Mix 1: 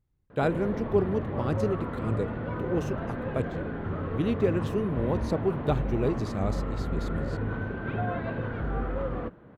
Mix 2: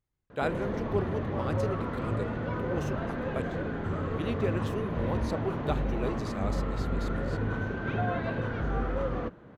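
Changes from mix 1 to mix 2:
speech: add low-shelf EQ 420 Hz −11.5 dB
background: remove high-frequency loss of the air 210 metres

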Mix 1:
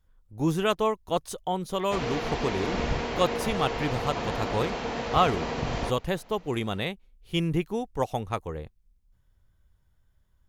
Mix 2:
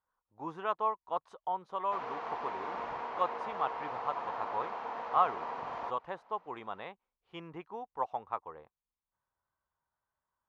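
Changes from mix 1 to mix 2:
speech: add high-frequency loss of the air 63 metres
master: add resonant band-pass 1,000 Hz, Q 2.7

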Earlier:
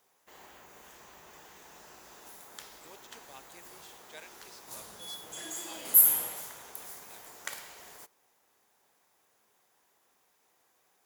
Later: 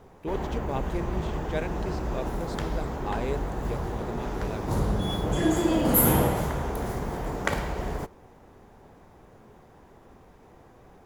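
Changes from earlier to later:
speech: entry −2.60 s
master: remove first difference

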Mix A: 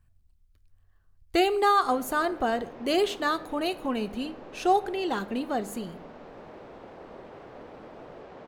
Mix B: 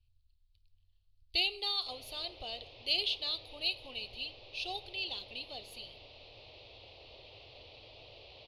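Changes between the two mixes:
speech −7.5 dB
master: add drawn EQ curve 110 Hz 0 dB, 180 Hz −26 dB, 590 Hz −10 dB, 1,000 Hz −16 dB, 1,600 Hz −26 dB, 2,600 Hz +8 dB, 4,400 Hz +14 dB, 7,500 Hz −17 dB, 11,000 Hz −2 dB, 16,000 Hz −23 dB

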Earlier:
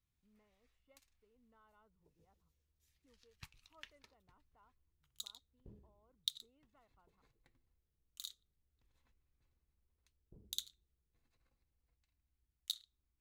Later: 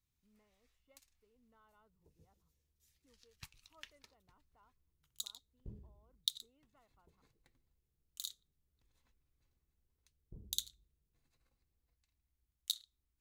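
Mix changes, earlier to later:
first sound: add low-shelf EQ 210 Hz +11 dB
master: add bass and treble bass 0 dB, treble +6 dB

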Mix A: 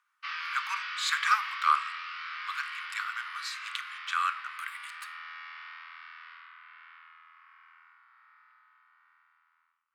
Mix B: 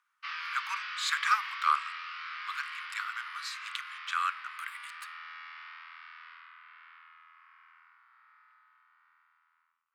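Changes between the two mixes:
speech: send −7.5 dB
background: send −8.0 dB

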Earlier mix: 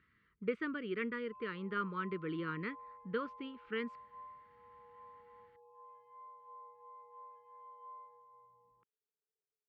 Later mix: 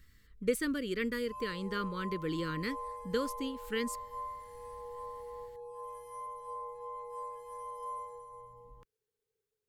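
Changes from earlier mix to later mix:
background +11.0 dB
master: remove loudspeaker in its box 190–2,500 Hz, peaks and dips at 270 Hz −7 dB, 530 Hz −9 dB, 1,300 Hz +4 dB, 1,800 Hz −4 dB

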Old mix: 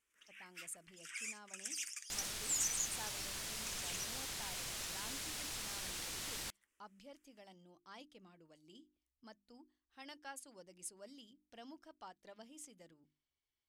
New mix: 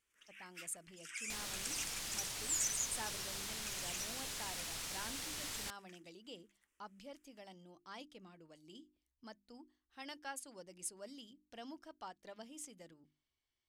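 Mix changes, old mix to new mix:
speech +4.0 dB
second sound: entry −0.80 s

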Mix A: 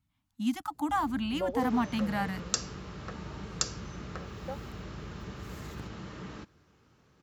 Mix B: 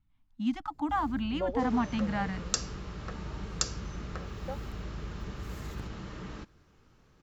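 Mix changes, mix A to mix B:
speech: add high-frequency loss of the air 150 metres
master: remove high-pass filter 78 Hz 12 dB per octave

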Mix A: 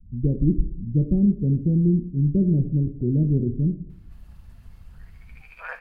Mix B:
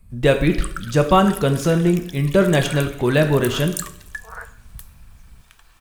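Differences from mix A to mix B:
speech: remove inverse Chebyshev low-pass filter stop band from 990 Hz, stop band 60 dB
first sound: unmuted
second sound: entry −2.95 s

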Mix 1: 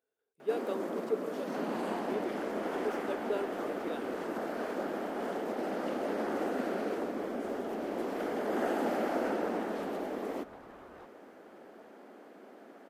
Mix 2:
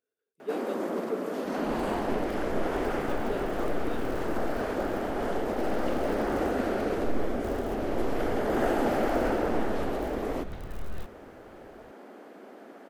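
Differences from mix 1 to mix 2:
speech: add parametric band 830 Hz −8 dB 0.86 octaves
first sound +5.0 dB
second sound: remove resonant band-pass 870 Hz, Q 1.5

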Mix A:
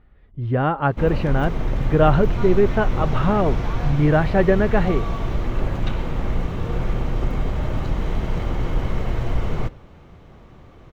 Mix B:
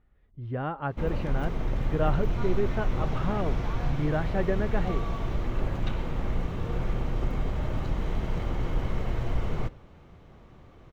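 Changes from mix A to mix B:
speech −11.5 dB
background −6.0 dB

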